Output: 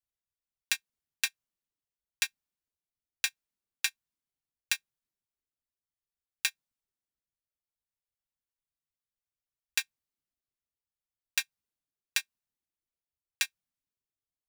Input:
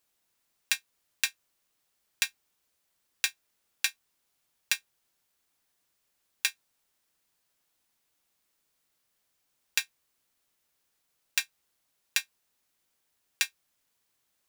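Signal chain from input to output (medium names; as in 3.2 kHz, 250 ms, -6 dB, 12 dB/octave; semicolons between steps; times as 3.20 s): reverb removal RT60 1.6 s; three bands expanded up and down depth 40%; trim -4 dB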